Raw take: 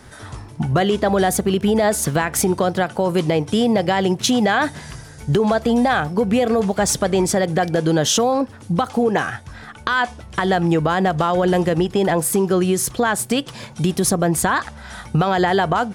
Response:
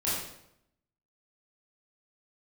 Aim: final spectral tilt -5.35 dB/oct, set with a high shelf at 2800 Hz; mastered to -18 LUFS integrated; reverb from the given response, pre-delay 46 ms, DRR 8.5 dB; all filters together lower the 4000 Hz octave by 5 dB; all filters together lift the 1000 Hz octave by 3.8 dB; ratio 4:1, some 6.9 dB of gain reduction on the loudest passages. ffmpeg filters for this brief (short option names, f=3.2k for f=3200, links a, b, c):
-filter_complex "[0:a]equalizer=f=1k:t=o:g=6,highshelf=f=2.8k:g=-4.5,equalizer=f=4k:t=o:g=-3.5,acompressor=threshold=-20dB:ratio=4,asplit=2[a][b];[1:a]atrim=start_sample=2205,adelay=46[c];[b][c]afir=irnorm=-1:irlink=0,volume=-16.5dB[d];[a][d]amix=inputs=2:normalize=0,volume=5.5dB"